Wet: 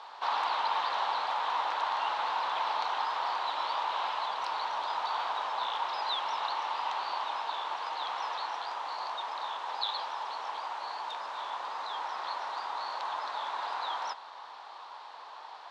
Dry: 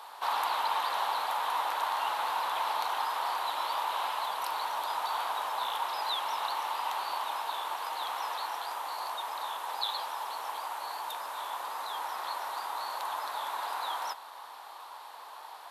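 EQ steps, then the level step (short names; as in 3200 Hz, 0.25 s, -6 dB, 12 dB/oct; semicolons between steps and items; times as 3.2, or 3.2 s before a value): LPF 5700 Hz 24 dB/oct; 0.0 dB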